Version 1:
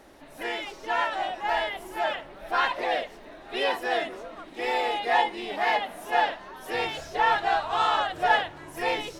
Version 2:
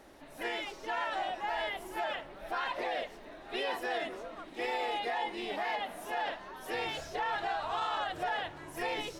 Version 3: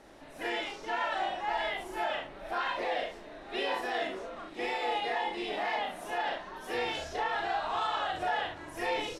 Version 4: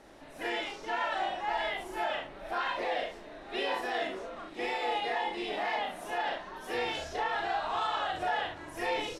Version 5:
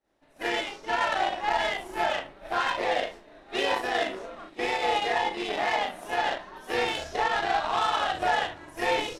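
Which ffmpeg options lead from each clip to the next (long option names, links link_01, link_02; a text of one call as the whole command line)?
ffmpeg -i in.wav -af "alimiter=limit=-22dB:level=0:latency=1:release=50,volume=-3.5dB" out.wav
ffmpeg -i in.wav -filter_complex "[0:a]lowpass=10000,asplit=2[link_01][link_02];[link_02]aecho=0:1:37|66:0.668|0.447[link_03];[link_01][link_03]amix=inputs=2:normalize=0" out.wav
ffmpeg -i in.wav -af anull out.wav
ffmpeg -i in.wav -af "agate=range=-33dB:threshold=-41dB:ratio=3:detection=peak,aeval=exprs='0.1*(cos(1*acos(clip(val(0)/0.1,-1,1)))-cos(1*PI/2))+0.00708*(cos(7*acos(clip(val(0)/0.1,-1,1)))-cos(7*PI/2))':channel_layout=same,volume=6.5dB" out.wav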